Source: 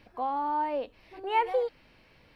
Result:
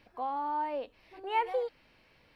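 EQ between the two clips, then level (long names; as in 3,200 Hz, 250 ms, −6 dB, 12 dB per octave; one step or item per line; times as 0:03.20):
low-shelf EQ 340 Hz −4 dB
−3.0 dB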